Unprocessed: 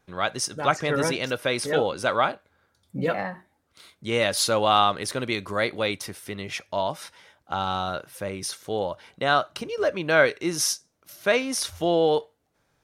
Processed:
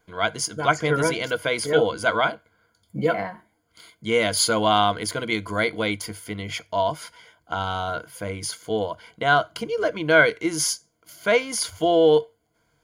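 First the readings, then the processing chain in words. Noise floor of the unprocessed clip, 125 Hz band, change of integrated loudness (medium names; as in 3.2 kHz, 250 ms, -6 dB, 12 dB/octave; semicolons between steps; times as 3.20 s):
-71 dBFS, +2.5 dB, +2.0 dB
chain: rippled EQ curve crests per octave 1.8, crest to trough 13 dB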